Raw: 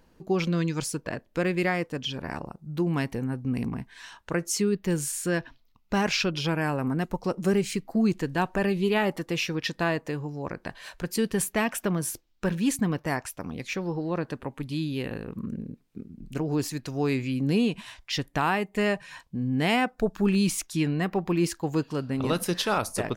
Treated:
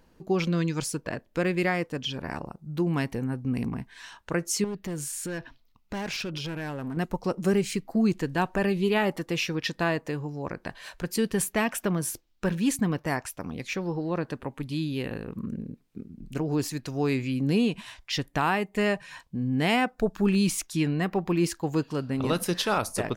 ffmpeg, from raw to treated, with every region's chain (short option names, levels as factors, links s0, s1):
-filter_complex "[0:a]asettb=1/sr,asplit=3[s0][s1][s2];[s0]atrim=end=4.644[s3];[s1]atrim=start=4.64:end=6.97,asetpts=PTS-STARTPTS,afade=t=in:d=0.004:c=qsin,afade=t=out:st=2.326:d=0.004:c=qsin,asoftclip=type=hard:threshold=0.075,acompressor=threshold=0.0316:ratio=6:attack=3.2:release=140:knee=1:detection=peak[s4];[s2]atrim=start=6.966[s5];[s3][s4]acrossfade=d=0.004:c1=hsin:c2=qsin[s6];[s6][s5]acrossfade=d=0.004:c1=qsin:c2=hsin"